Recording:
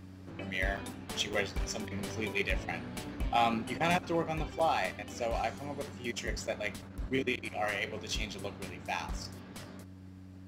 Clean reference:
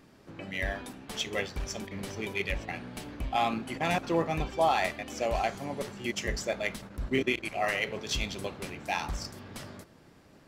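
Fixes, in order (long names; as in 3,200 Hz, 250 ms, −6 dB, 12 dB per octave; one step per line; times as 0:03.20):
hum removal 93.8 Hz, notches 3
repair the gap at 0:00.77/0:01.33/0:04.59/0:06.47, 6.3 ms
level correction +4 dB, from 0:03.97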